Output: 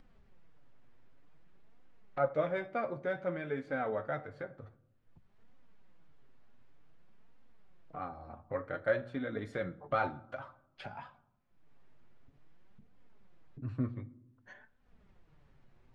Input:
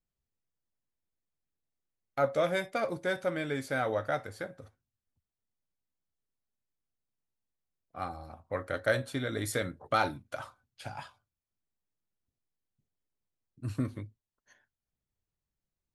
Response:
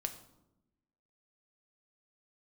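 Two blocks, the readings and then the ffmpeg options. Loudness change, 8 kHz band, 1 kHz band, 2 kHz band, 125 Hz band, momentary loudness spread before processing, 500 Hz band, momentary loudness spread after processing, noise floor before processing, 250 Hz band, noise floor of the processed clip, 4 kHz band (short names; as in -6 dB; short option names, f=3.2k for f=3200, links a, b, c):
-4.0 dB, under -25 dB, -3.5 dB, -5.5 dB, -4.0 dB, 16 LU, -3.0 dB, 18 LU, under -85 dBFS, -3.0 dB, -69 dBFS, -13.5 dB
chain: -filter_complex "[0:a]lowpass=2k,acompressor=mode=upward:threshold=-35dB:ratio=2.5,flanger=delay=3.7:depth=4.9:regen=34:speed=0.54:shape=triangular,asplit=2[a][b];[1:a]atrim=start_sample=2205,asetrate=48510,aresample=44100[c];[b][c]afir=irnorm=-1:irlink=0,volume=-3dB[d];[a][d]amix=inputs=2:normalize=0,volume=-4dB"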